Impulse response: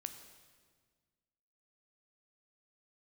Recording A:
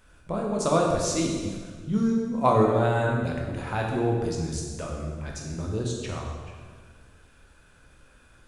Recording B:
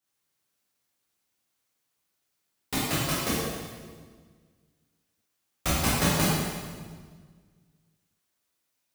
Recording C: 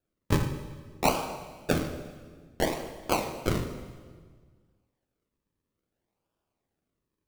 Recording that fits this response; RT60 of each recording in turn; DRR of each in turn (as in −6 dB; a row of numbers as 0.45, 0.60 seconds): C; 1.6, 1.6, 1.6 seconds; −1.0, −9.5, 7.5 decibels